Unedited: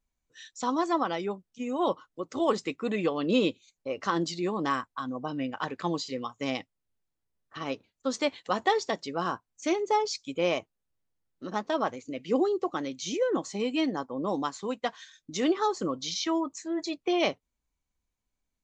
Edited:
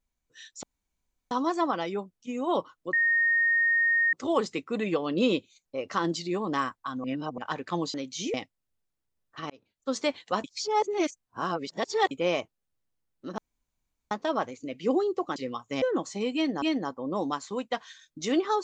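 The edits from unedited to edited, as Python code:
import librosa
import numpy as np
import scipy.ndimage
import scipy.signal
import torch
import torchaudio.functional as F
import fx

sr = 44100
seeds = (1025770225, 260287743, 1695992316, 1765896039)

y = fx.edit(x, sr, fx.insert_room_tone(at_s=0.63, length_s=0.68),
    fx.insert_tone(at_s=2.25, length_s=1.2, hz=1850.0, db=-20.5),
    fx.reverse_span(start_s=5.16, length_s=0.34),
    fx.swap(start_s=6.06, length_s=0.46, other_s=12.81, other_length_s=0.4),
    fx.fade_in_span(start_s=7.68, length_s=0.4),
    fx.reverse_span(start_s=8.62, length_s=1.67),
    fx.insert_room_tone(at_s=11.56, length_s=0.73),
    fx.repeat(start_s=13.74, length_s=0.27, count=2), tone=tone)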